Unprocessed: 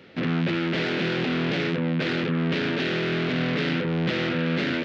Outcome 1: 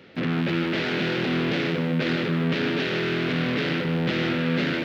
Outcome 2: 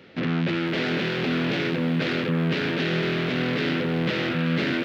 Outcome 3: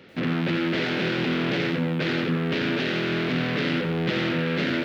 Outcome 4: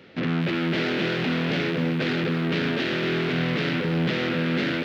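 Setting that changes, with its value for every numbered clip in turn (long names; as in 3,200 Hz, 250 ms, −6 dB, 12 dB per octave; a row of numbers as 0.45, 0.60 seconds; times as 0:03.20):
feedback echo at a low word length, delay time: 153, 504, 87, 254 milliseconds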